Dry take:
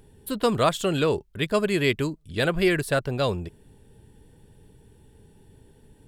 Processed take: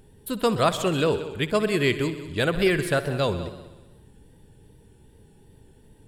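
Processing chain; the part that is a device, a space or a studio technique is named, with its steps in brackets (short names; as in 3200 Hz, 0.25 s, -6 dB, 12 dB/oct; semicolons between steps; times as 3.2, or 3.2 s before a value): multi-head tape echo (multi-head echo 63 ms, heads all three, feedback 43%, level -17 dB; wow and flutter)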